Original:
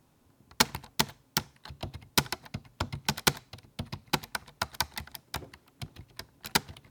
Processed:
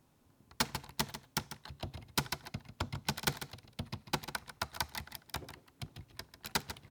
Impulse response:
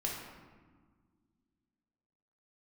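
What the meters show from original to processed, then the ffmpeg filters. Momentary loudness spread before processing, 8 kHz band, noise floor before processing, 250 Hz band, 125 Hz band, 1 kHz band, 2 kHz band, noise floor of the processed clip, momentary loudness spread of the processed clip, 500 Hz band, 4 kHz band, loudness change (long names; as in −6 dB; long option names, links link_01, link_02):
18 LU, −7.5 dB, −66 dBFS, −5.5 dB, −4.0 dB, −6.0 dB, −6.5 dB, −69 dBFS, 12 LU, −6.5 dB, −7.5 dB, −8.0 dB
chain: -filter_complex "[0:a]asoftclip=type=tanh:threshold=-18dB,asplit=2[link_01][link_02];[link_02]aecho=0:1:145:0.266[link_03];[link_01][link_03]amix=inputs=2:normalize=0,volume=-3.5dB"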